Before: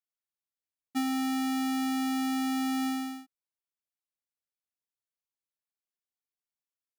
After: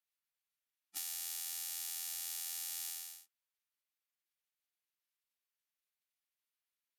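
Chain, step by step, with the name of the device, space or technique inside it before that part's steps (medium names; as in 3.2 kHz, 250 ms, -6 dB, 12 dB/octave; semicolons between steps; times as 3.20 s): piezo pickup straight into a mixer (low-pass 8.3 kHz 12 dB/octave; differentiator); spectral gate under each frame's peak -10 dB weak; trim +15.5 dB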